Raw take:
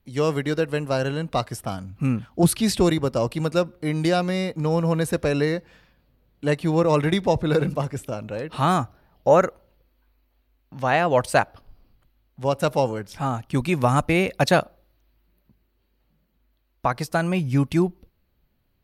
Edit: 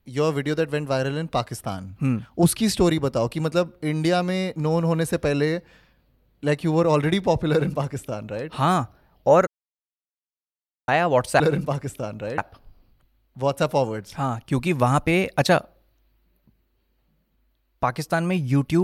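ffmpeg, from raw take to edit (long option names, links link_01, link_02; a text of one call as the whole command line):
ffmpeg -i in.wav -filter_complex "[0:a]asplit=5[link_01][link_02][link_03][link_04][link_05];[link_01]atrim=end=9.47,asetpts=PTS-STARTPTS,afade=type=out:start_time=9.466:duration=0.004:curve=hsin[link_06];[link_02]atrim=start=9.47:end=10.88,asetpts=PTS-STARTPTS,volume=0[link_07];[link_03]atrim=start=10.88:end=11.402,asetpts=PTS-STARTPTS,afade=type=in:duration=0.004:curve=hsin[link_08];[link_04]atrim=start=7.488:end=8.472[link_09];[link_05]atrim=start=11.398[link_10];[link_06][link_07][link_08]concat=n=3:v=0:a=1[link_11];[link_11][link_09]acrossfade=duration=0.004:curve1=hsin:curve2=hsin[link_12];[link_12][link_10]acrossfade=duration=0.004:curve1=hsin:curve2=hsin" out.wav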